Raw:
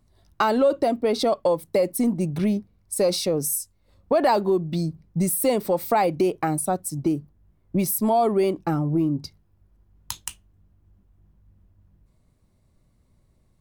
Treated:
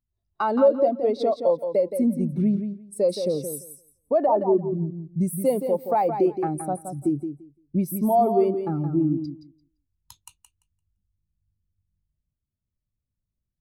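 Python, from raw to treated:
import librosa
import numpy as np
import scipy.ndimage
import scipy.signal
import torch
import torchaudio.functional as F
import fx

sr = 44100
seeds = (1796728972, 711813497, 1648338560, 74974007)

p1 = fx.savgol(x, sr, points=65, at=(4.26, 4.87))
p2 = p1 + fx.echo_feedback(p1, sr, ms=171, feedback_pct=29, wet_db=-5.5, dry=0)
y = fx.spectral_expand(p2, sr, expansion=1.5)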